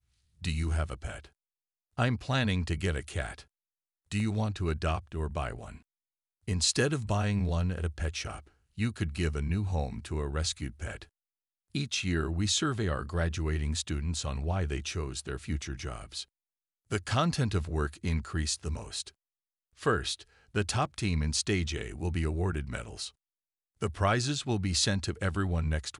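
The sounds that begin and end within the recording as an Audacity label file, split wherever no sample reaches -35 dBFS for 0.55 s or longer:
1.990000	3.330000	sound
4.120000	5.700000	sound
6.480000	11.020000	sound
11.750000	16.230000	sound
16.920000	19.080000	sound
19.830000	23.080000	sound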